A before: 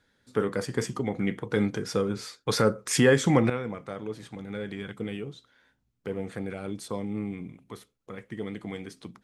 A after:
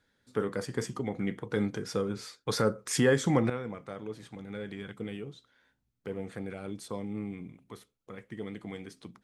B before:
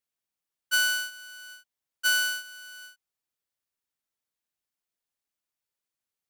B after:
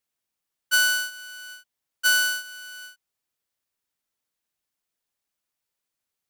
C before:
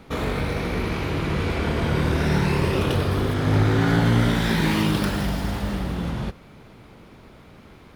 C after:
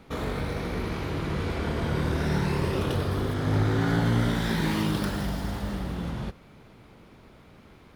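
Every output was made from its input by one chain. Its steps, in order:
dynamic bell 2.5 kHz, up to -4 dB, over -45 dBFS, Q 2.8; peak normalisation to -12 dBFS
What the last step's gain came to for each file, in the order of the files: -4.0 dB, +4.5 dB, -5.0 dB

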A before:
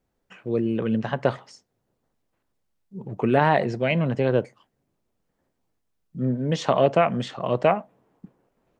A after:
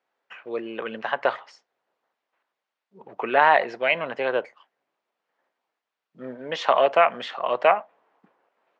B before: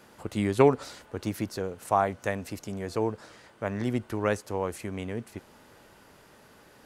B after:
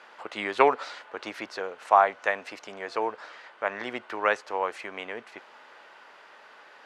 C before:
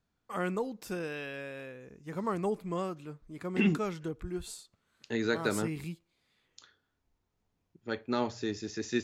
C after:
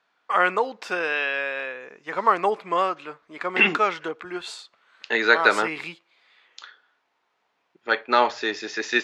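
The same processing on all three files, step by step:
band-pass 800–3100 Hz; peak normalisation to -3 dBFS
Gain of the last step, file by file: +6.5 dB, +8.5 dB, +18.5 dB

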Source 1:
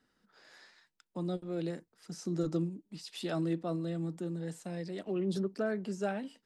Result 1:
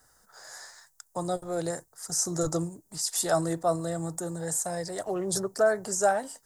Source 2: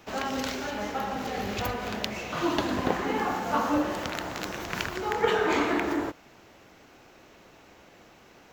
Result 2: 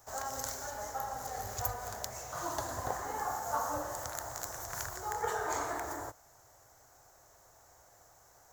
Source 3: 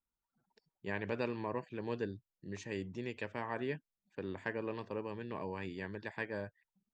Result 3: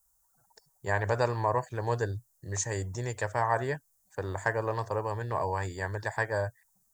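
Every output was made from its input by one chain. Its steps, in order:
FFT filter 120 Hz 0 dB, 200 Hz -19 dB, 350 Hz -13 dB, 710 Hz +1 dB, 1.8 kHz -5 dB, 2.6 kHz -19 dB, 4.4 kHz -5 dB, 6.9 kHz +11 dB; peak normalisation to -12 dBFS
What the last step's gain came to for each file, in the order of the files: +14.5 dB, -5.5 dB, +15.0 dB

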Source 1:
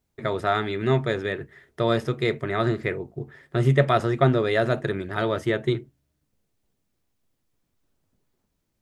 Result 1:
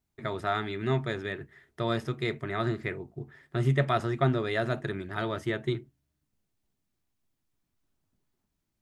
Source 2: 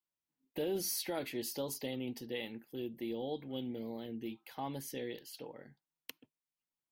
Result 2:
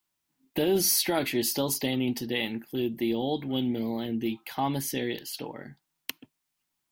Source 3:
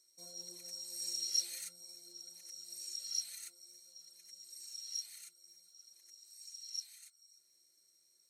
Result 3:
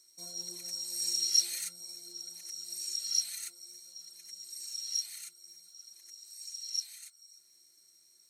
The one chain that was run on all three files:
peaking EQ 500 Hz -8 dB 0.39 oct; peak normalisation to -12 dBFS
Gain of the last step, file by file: -5.0 dB, +13.0 dB, +7.5 dB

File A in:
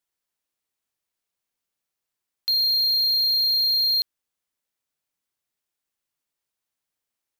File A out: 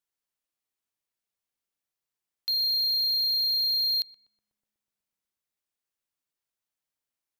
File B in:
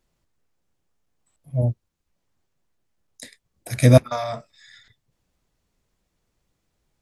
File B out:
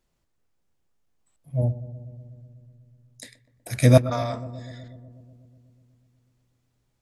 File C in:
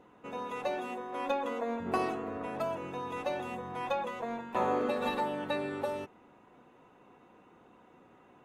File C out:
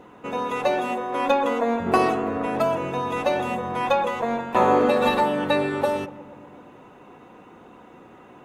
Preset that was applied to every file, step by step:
filtered feedback delay 123 ms, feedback 79%, low-pass 1.1 kHz, level -14.5 dB; normalise loudness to -23 LUFS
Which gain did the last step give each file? -5.0 dB, -2.0 dB, +11.5 dB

